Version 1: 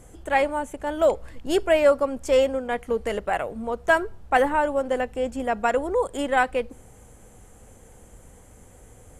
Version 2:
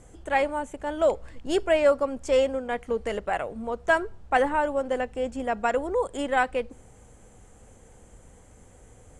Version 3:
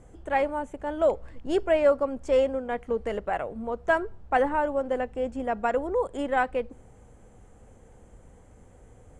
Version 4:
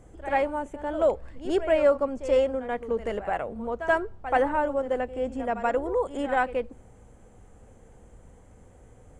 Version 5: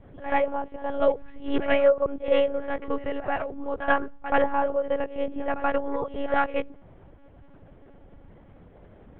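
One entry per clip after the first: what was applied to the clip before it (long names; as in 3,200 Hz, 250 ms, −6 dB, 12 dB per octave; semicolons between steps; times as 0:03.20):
low-pass filter 9,400 Hz 24 dB per octave; level −2.5 dB
high-shelf EQ 2,500 Hz −10 dB
echo ahead of the sound 81 ms −12.5 dB
one-pitch LPC vocoder at 8 kHz 280 Hz; level +1.5 dB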